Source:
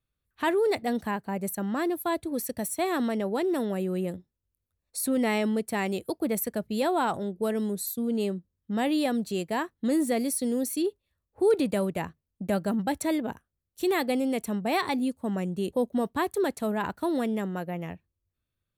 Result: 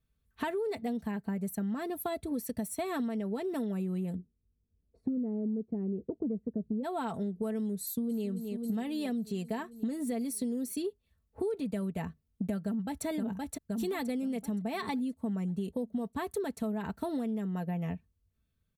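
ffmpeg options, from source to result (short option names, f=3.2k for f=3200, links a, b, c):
-filter_complex "[0:a]asplit=3[a][b][c];[a]afade=t=out:st=4.14:d=0.02[d];[b]lowpass=f=370:t=q:w=1.6,afade=t=in:st=4.14:d=0.02,afade=t=out:st=6.83:d=0.02[e];[c]afade=t=in:st=6.83:d=0.02[f];[d][e][f]amix=inputs=3:normalize=0,asplit=2[g][h];[h]afade=t=in:st=7.82:d=0.01,afade=t=out:st=8.29:d=0.01,aecho=0:1:270|540|810|1080|1350|1620|1890|2160|2430:0.237137|0.165996|0.116197|0.0813381|0.0569367|0.0398557|0.027899|0.0195293|0.0136705[i];[g][i]amix=inputs=2:normalize=0,asplit=2[j][k];[k]afade=t=in:st=12.65:d=0.01,afade=t=out:st=13.05:d=0.01,aecho=0:1:520|1040|1560|2080|2600|3120:0.501187|0.250594|0.125297|0.0626484|0.0313242|0.0156621[l];[j][l]amix=inputs=2:normalize=0,equalizer=f=91:t=o:w=2.9:g=11,aecho=1:1:4.5:0.57,acompressor=threshold=-30dB:ratio=10,volume=-1dB"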